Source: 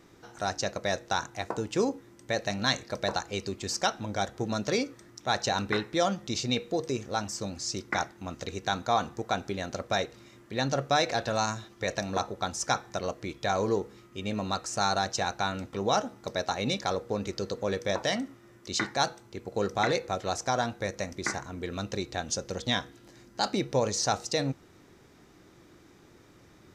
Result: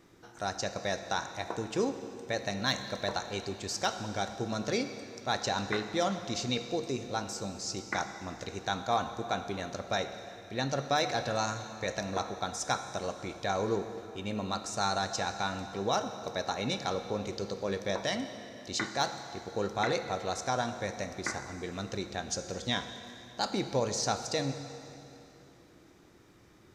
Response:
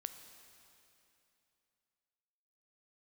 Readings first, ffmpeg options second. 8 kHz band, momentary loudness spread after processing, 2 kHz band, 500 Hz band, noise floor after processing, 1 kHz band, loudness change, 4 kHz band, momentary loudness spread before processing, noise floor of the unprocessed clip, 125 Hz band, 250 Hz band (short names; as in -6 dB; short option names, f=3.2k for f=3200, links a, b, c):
-3.0 dB, 8 LU, -3.0 dB, -3.0 dB, -57 dBFS, -3.0 dB, -3.0 dB, -3.0 dB, 7 LU, -57 dBFS, -3.0 dB, -3.0 dB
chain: -filter_complex "[0:a]asoftclip=type=hard:threshold=-14dB[a];[1:a]atrim=start_sample=2205[b];[a][b]afir=irnorm=-1:irlink=0"